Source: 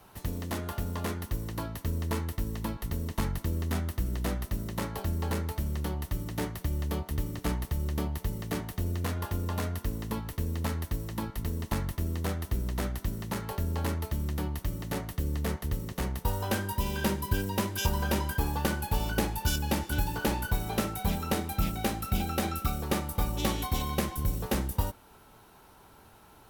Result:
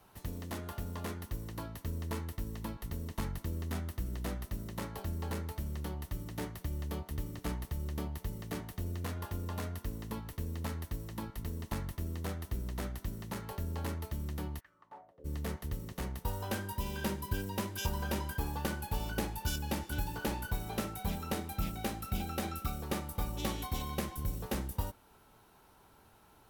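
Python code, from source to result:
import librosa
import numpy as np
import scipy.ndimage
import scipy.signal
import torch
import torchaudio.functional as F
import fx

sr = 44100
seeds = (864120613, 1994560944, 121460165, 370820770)

y = fx.bandpass_q(x, sr, hz=fx.line((14.59, 1900.0), (15.24, 460.0)), q=5.2, at=(14.59, 15.24), fade=0.02)
y = y * librosa.db_to_amplitude(-6.5)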